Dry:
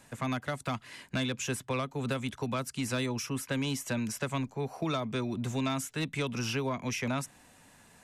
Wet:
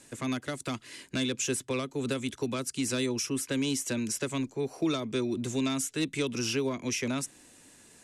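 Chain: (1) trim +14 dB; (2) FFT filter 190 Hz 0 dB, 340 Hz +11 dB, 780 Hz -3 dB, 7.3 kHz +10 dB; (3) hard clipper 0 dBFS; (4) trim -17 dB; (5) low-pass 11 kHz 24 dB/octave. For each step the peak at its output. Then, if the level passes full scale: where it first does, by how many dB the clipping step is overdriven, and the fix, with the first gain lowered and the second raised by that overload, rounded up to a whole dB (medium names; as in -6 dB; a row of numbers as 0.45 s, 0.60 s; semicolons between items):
-9.0 dBFS, -2.0 dBFS, -2.0 dBFS, -19.0 dBFS, -19.0 dBFS; nothing clips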